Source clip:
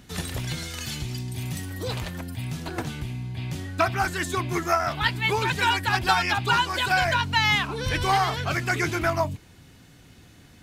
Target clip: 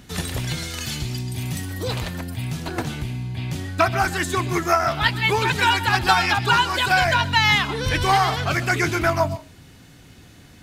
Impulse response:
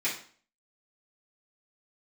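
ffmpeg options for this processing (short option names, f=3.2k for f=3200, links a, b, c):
-filter_complex "[0:a]asplit=2[a][b];[1:a]atrim=start_sample=2205,asetrate=88200,aresample=44100,adelay=122[c];[b][c]afir=irnorm=-1:irlink=0,volume=-15.5dB[d];[a][d]amix=inputs=2:normalize=0,volume=4dB"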